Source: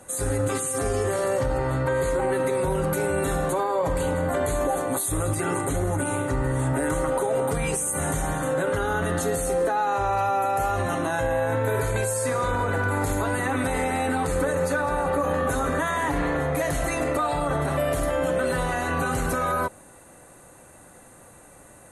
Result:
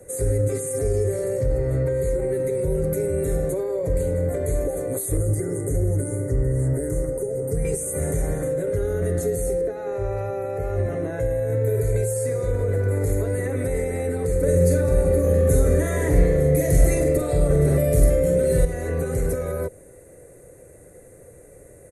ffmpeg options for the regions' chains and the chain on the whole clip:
-filter_complex "[0:a]asettb=1/sr,asplit=3[s0][s1][s2];[s0]atrim=end=5.174[s3];[s1]atrim=start=5.17:end=7.65,asetpts=PTS-STARTPTS,afade=t=in:d=0.004:c=qsin,afade=t=out:st=2.476:d=0.004:c=qsin,asuperstop=centerf=3100:order=8:qfactor=1.3,acrossover=split=360|3000[s4][s5][s6];[s5]acompressor=threshold=0.01:ratio=2:attack=3.2:release=140:knee=2.83:detection=peak[s7];[s4][s7][s6]amix=inputs=3:normalize=0[s8];[s2]atrim=start=7.646[s9];[s3][s8]acrossfade=d=0.004:c1=hsin:c2=qsin[s10];[s10][s9]acrossfade=d=0.004:c1=qsin:c2=hsin,asettb=1/sr,asplit=3[s11][s12][s13];[s11]atrim=end=9.614[s14];[s12]atrim=start=9.61:end=11.2,asetpts=PTS-STARTPTS,afade=t=in:d=0.004:c=qsin,afade=t=out:st=1.586:d=0.004:c=qsin,bandreject=f=60:t=h:w=6,bandreject=f=120:t=h:w=6,bandreject=f=180:t=h:w=6,bandreject=f=240:t=h:w=6,bandreject=f=300:t=h:w=6,bandreject=f=360:t=h:w=6,bandreject=f=420:t=h:w=6,acrossover=split=3900[s15][s16];[s16]acompressor=threshold=0.002:ratio=4:attack=1:release=60[s17];[s15][s17]amix=inputs=2:normalize=0[s18];[s13]atrim=start=11.196[s19];[s14][s18]acrossfade=d=0.004:c1=hsin:c2=qsin[s20];[s20][s19]acrossfade=d=0.004:c1=qsin:c2=hsin,asettb=1/sr,asplit=3[s21][s22][s23];[s21]atrim=end=14.434[s24];[s22]atrim=start=14.43:end=18.65,asetpts=PTS-STARTPTS,afade=t=in:d=0.004:c=qsin,afade=t=out:st=4.216:d=0.004:c=qsin,asplit=2[s25][s26];[s26]adelay=46,volume=0.531[s27];[s25][s27]amix=inputs=2:normalize=0,atrim=end_sample=186102,acontrast=80[s28];[s23]atrim=start=18.646[s29];[s24][s28]acrossfade=d=0.004:c1=hsin:c2=qsin[s30];[s30][s29]acrossfade=d=0.004:c1=qsin:c2=hsin,firequalizer=gain_entry='entry(100,0);entry(240,-10);entry(450,6);entry(840,-20);entry(1200,-19);entry(2100,-7);entry(2900,-23);entry(4700,-14);entry(7000,-10);entry(12000,-6)':delay=0.05:min_phase=1,acrossover=split=280|3000[s31][s32][s33];[s32]acompressor=threshold=0.0224:ratio=3[s34];[s31][s34][s33]amix=inputs=3:normalize=0,volume=2"

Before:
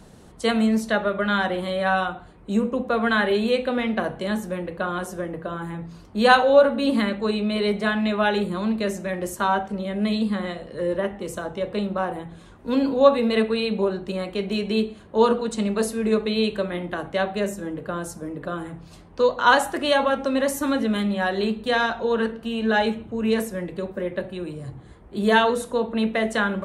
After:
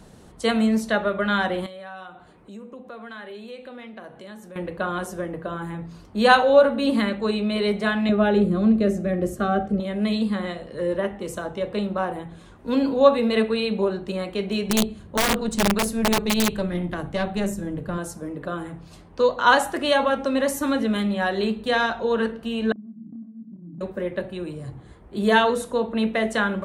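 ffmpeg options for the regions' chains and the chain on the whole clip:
-filter_complex "[0:a]asettb=1/sr,asplit=3[s0][s1][s2];[s0]atrim=end=1.664[s3];[s1]atrim=start=1.66:end=4.56,asetpts=PTS-STARTPTS,afade=t=in:d=0.004:c=qsin,afade=t=out:st=2.896:d=0.004:c=qsin,acompressor=threshold=0.00708:ratio=2.5:attack=3.2:release=140:knee=1:detection=peak,highpass=f=180:p=1[s4];[s2]atrim=start=4.556[s5];[s3][s4]acrossfade=d=0.004:c1=hsin:c2=qsin[s6];[s6][s5]acrossfade=d=0.004:c1=qsin:c2=hsin,asettb=1/sr,asplit=3[s7][s8][s9];[s7]atrim=end=8.094[s10];[s8]atrim=start=8.09:end=9.8,asetpts=PTS-STARTPTS,afade=t=in:d=0.004:c=qsin,afade=t=out:st=1.706:d=0.004:c=qsin,asuperstop=centerf=940:order=8:qfactor=4.3,tiltshelf=f=800:g=7.5[s11];[s9]atrim=start=9.796[s12];[s10][s11]acrossfade=d=0.004:c1=hsin:c2=qsin[s13];[s13][s12]acrossfade=d=0.004:c1=qsin:c2=hsin,asettb=1/sr,asplit=3[s14][s15][s16];[s14]atrim=end=14.694[s17];[s15]atrim=start=14.69:end=17.98,asetpts=PTS-STARTPTS,afade=t=in:d=0.004:c=qsin,afade=t=out:st=3.286:d=0.004:c=qsin,bass=f=250:g=11,treble=f=4000:g=4,aeval=exprs='(tanh(3.55*val(0)+0.6)-tanh(0.6))/3.55':c=same,aeval=exprs='(mod(4.47*val(0)+1,2)-1)/4.47':c=same[s18];[s16]atrim=start=17.976[s19];[s17][s18]acrossfade=d=0.004:c1=hsin:c2=qsin[s20];[s20][s19]acrossfade=d=0.004:c1=qsin:c2=hsin,asettb=1/sr,asplit=3[s21][s22][s23];[s21]atrim=end=22.724[s24];[s22]atrim=start=22.72:end=23.81,asetpts=PTS-STARTPTS,afade=t=in:d=0.004:c=qsin,afade=t=out:st=1.086:d=0.004:c=qsin,asuperpass=centerf=210:order=12:qfactor=1.2,acompressor=threshold=0.0141:ratio=12:attack=3.2:release=140:knee=1:detection=peak,asplit=2[s25][s26];[s26]adelay=30,volume=0.708[s27];[s25][s27]amix=inputs=2:normalize=0,atrim=end_sample=48069[s28];[s23]atrim=start=23.806[s29];[s24][s28]acrossfade=d=0.004:c1=hsin:c2=qsin[s30];[s30][s29]acrossfade=d=0.004:c1=qsin:c2=hsin"

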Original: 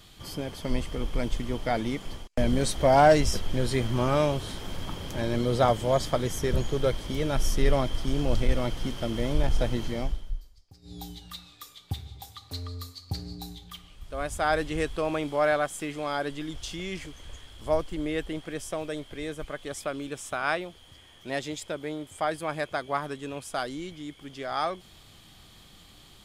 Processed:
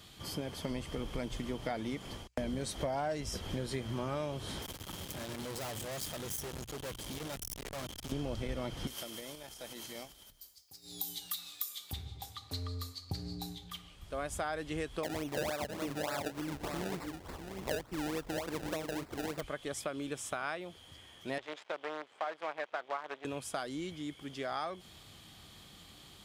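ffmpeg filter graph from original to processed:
-filter_complex "[0:a]asettb=1/sr,asplit=3[s0][s1][s2];[s0]atrim=end=4.624[s3];[s1]atrim=start=4.62:end=8.12,asetpts=PTS-STARTPTS,afade=t=in:d=0.004:c=qsin,afade=t=out:st=3.496:d=0.004:c=qsin,aeval=exprs='(tanh(79.4*val(0)+0.55)-tanh(0.55))/79.4':c=same,aemphasis=mode=production:type=50kf[s4];[s2]atrim=start=8.116[s5];[s3][s4]acrossfade=d=0.004:c1=hsin:c2=qsin[s6];[s6][s5]acrossfade=d=0.004:c1=qsin:c2=hsin,asettb=1/sr,asplit=3[s7][s8][s9];[s7]atrim=end=8.874[s10];[s8]atrim=start=8.87:end=11.93,asetpts=PTS-STARTPTS,afade=t=in:d=0.004:c=qsin,afade=t=out:st=3.056:d=0.004:c=qsin,acompressor=threshold=0.0158:ratio=5:attack=3.2:release=140:knee=1:detection=peak,aemphasis=mode=production:type=riaa[s11];[s9]atrim=start=11.926[s12];[s10][s11]acrossfade=d=0.004:c1=hsin:c2=qsin[s13];[s13][s12]acrossfade=d=0.004:c1=qsin:c2=hsin,asettb=1/sr,asplit=3[s14][s15][s16];[s14]atrim=end=15.034[s17];[s15]atrim=start=15.03:end=19.41,asetpts=PTS-STARTPTS,afade=t=in:d=0.004:c=qsin,afade=t=out:st=4.376:d=0.004:c=qsin,aecho=1:1:653:0.355,atrim=end_sample=193158,acrusher=samples=28:mix=1:aa=0.000001:lfo=1:lforange=28:lforate=3.4[s18];[s16]atrim=start=19.406[s19];[s17][s18]acrossfade=d=0.004:c1=hsin:c2=qsin[s20];[s20][s19]acrossfade=d=0.004:c1=qsin:c2=hsin,asettb=1/sr,asplit=3[s21][s22][s23];[s21]atrim=end=21.384[s24];[s22]atrim=start=21.38:end=23.25,asetpts=PTS-STARTPTS,afade=t=in:d=0.004:c=qsin,afade=t=out:st=1.866:d=0.004:c=qsin,acrusher=bits=6:dc=4:mix=0:aa=0.000001,highpass=500,lowpass=2600[s25];[s23]atrim=start=23.246[s26];[s24][s25]acrossfade=d=0.004:c1=hsin:c2=qsin[s27];[s27][s26]acrossfade=d=0.004:c1=qsin:c2=hsin,highpass=53,bandreject=f=60:t=h:w=6,bandreject=f=120:t=h:w=6,acompressor=threshold=0.0251:ratio=6,volume=0.841"

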